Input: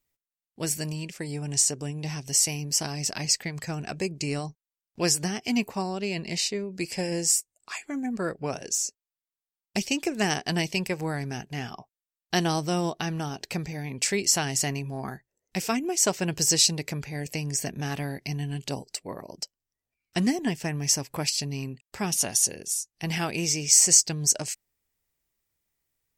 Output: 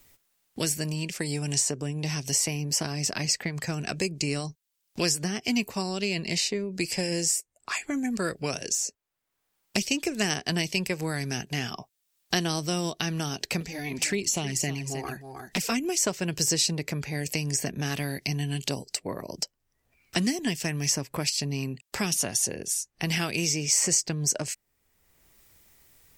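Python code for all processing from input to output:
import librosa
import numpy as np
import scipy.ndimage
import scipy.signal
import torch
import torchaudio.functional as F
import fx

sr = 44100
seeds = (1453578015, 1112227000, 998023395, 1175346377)

y = fx.chain(x, sr, fx.env_flanger(rest_ms=11.5, full_db=-21.5),
    fx.echo_single(ms=312, db=-13.5), at=(13.6, 15.72))
y = fx.dynamic_eq(y, sr, hz=820.0, q=3.5, threshold_db=-49.0, ratio=4.0, max_db=-5)
y = fx.band_squash(y, sr, depth_pct=70)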